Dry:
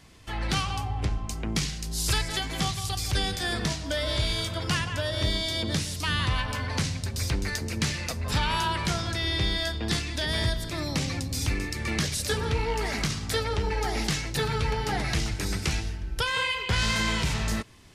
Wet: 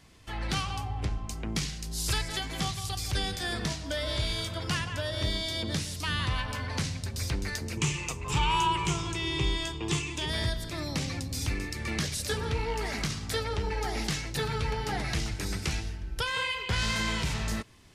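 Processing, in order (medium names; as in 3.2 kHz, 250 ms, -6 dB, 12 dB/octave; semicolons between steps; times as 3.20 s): 7.77–10.30 s: rippled EQ curve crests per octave 0.7, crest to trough 13 dB; trim -3.5 dB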